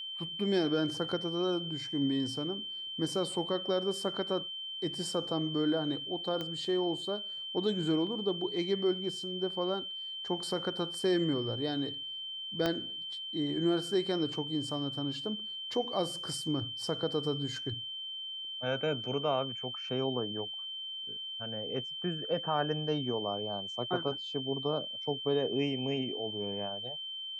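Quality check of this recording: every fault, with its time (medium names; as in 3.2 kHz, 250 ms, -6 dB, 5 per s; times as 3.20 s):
whine 3.1 kHz -38 dBFS
6.41 s: pop -23 dBFS
12.66 s: pop -16 dBFS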